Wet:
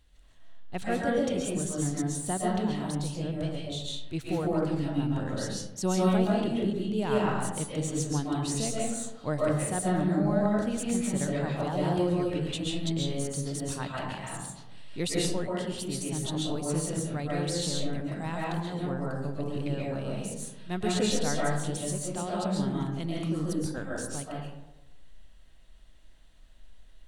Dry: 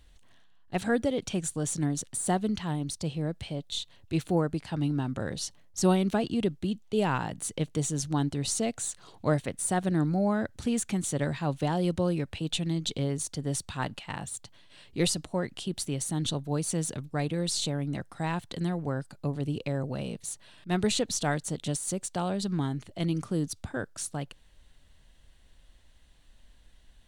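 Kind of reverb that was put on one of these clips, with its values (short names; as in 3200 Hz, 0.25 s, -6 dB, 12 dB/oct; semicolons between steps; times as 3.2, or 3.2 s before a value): digital reverb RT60 0.98 s, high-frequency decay 0.4×, pre-delay 95 ms, DRR -4.5 dB; gain -5.5 dB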